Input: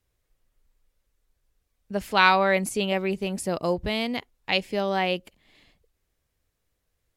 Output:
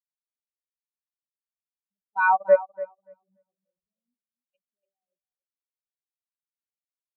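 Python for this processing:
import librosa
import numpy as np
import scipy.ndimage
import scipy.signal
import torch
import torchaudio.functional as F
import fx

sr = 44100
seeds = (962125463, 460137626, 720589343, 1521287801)

y = fx.level_steps(x, sr, step_db=21)
y = fx.echo_feedback(y, sr, ms=289, feedback_pct=57, wet_db=-4.0)
y = fx.spectral_expand(y, sr, expansion=4.0)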